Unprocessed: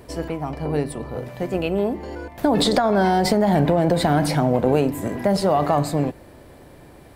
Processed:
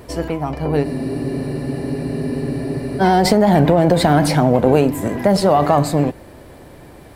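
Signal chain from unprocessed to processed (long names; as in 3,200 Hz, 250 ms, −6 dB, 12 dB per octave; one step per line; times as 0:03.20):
pitch vibrato 11 Hz 33 cents
frozen spectrum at 0:00.87, 2.13 s
level +5 dB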